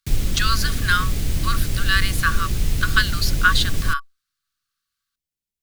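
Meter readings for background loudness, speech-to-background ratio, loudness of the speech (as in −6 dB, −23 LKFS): −25.5 LKFS, 2.5 dB, −23.0 LKFS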